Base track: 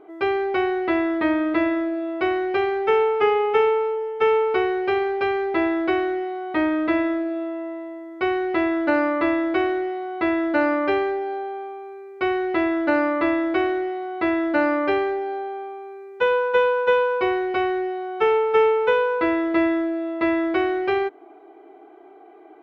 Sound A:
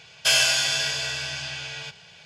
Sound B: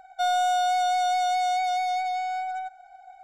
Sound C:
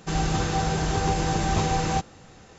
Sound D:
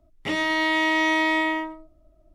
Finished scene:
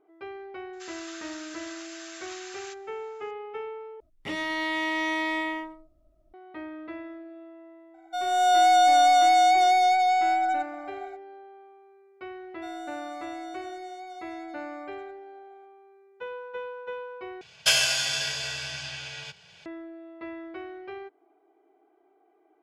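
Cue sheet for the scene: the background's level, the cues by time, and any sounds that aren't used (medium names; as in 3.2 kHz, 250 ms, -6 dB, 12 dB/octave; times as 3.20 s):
base track -18 dB
0.73 s: add C -9.5 dB + steep high-pass 1.3 kHz
4.00 s: replace with D -6.5 dB
7.94 s: add B -8.5 dB + level rider gain up to 15 dB
12.43 s: add B -17.5 dB
17.41 s: replace with A -4 dB + transient shaper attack +5 dB, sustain -2 dB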